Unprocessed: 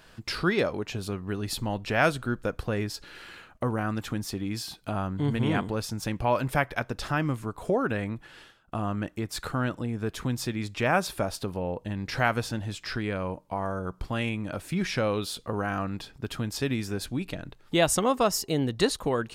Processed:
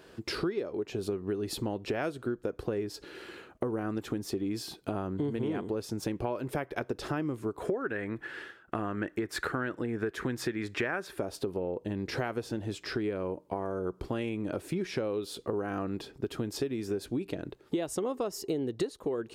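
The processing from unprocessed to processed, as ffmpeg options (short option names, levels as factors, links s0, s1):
-filter_complex "[0:a]asettb=1/sr,asplit=3[s0][s1][s2];[s0]atrim=end=7.604[s3];[s1]atrim=start=7.6:end=11.18,asetpts=PTS-STARTPTS,afade=t=in:d=0.004:c=qsin,afade=t=out:st=3.576:d=0.004:c=qsin,equalizer=f=1700:t=o:w=0.95:g=14[s4];[s2]atrim=start=11.176[s5];[s3][s4]acrossfade=d=0.004:c1=hsin:c2=qsin[s6];[s6][s5]acrossfade=d=0.004:c1=qsin:c2=hsin,highpass=46,equalizer=f=380:w=1.4:g=15,acompressor=threshold=0.0562:ratio=12,volume=0.668"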